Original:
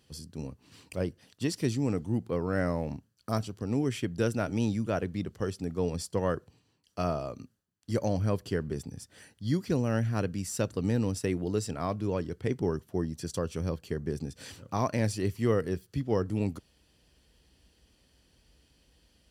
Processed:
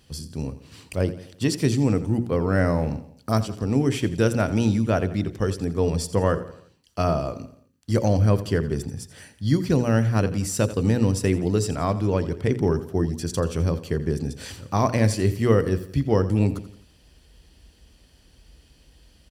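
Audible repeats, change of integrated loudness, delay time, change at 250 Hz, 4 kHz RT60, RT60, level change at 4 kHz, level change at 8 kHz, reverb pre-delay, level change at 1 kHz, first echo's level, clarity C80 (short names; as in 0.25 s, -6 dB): 4, +8.0 dB, 85 ms, +7.5 dB, none, none, +7.5 dB, +7.5 dB, none, +7.5 dB, -15.0 dB, none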